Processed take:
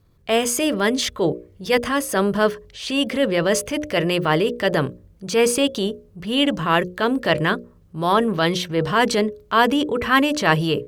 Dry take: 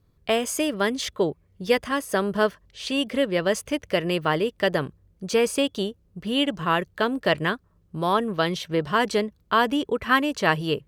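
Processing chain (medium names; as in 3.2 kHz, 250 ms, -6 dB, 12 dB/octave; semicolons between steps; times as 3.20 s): hum notches 60/120/180/240/300/360/420/480/540/600 Hz; transient shaper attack -6 dB, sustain +3 dB; trim +6 dB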